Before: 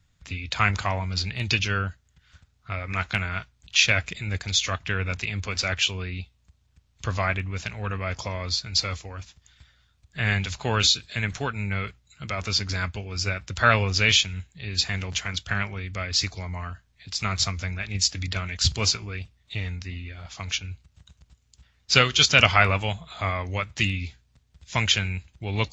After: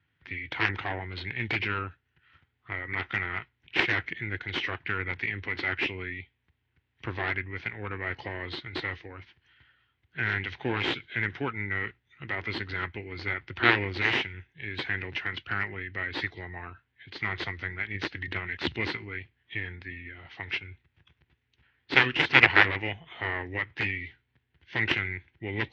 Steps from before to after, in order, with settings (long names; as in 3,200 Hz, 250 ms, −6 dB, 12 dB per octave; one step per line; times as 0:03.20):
harmonic generator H 6 −15 dB, 7 −11 dB, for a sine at −1 dBFS
loudspeaker in its box 150–3,400 Hz, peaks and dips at 190 Hz −10 dB, 350 Hz +8 dB, 620 Hz −9 dB, 1,200 Hz −8 dB, 2,100 Hz +6 dB
formants moved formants −2 semitones
level −1 dB